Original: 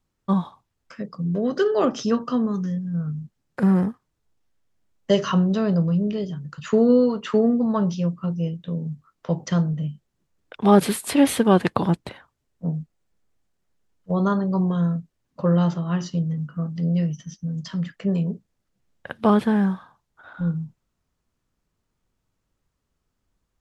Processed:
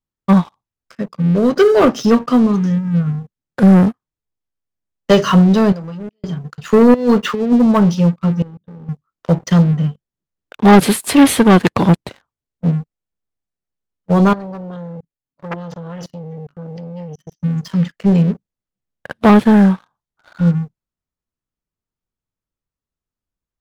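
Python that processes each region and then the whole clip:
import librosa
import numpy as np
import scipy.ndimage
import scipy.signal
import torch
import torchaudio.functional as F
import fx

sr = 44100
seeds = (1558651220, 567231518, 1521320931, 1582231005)

y = fx.chain(x, sr, fx.level_steps(step_db=24),
    fx.low_shelf(hz=460.0, db=-11.0), at=(5.72, 6.24))
y = fx.chain(y, sr, fx.over_compress(threshold_db=-22.0, ratio=-0.5),
    fx.notch_comb(f0_hz=320.0),
    fx.resample_linear(factor=2), at=(6.94, 7.53))
y = fx.chain(y, sr, fx.level_steps(step_db=18),
    fx.moving_average(points=19),
    fx.hum_notches(base_hz=50, count=8), at=(8.42, 8.89))
y = fx.chain(y, sr, fx.comb(ms=7.1, depth=0.38),
    fx.level_steps(step_db=16),
    fx.transformer_sat(knee_hz=1900.0), at=(14.33, 17.4))
y = fx.leveller(y, sr, passes=3)
y = fx.upward_expand(y, sr, threshold_db=-27.0, expansion=1.5)
y = F.gain(torch.from_numpy(y), 2.5).numpy()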